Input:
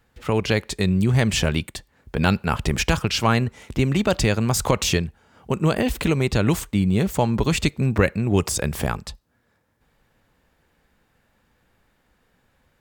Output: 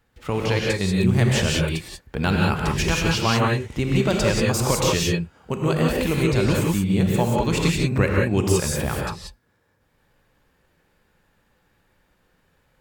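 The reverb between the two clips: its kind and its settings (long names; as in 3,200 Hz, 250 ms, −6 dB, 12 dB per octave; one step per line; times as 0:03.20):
reverb whose tail is shaped and stops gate 210 ms rising, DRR −2 dB
level −3.5 dB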